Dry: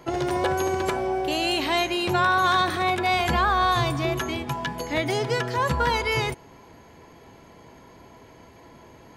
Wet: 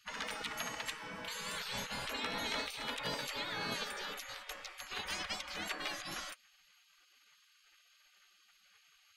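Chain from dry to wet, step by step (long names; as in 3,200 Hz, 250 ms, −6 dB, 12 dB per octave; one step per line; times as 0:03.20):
high-shelf EQ 3,000 Hz −11 dB
gate on every frequency bin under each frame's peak −25 dB weak
level +3 dB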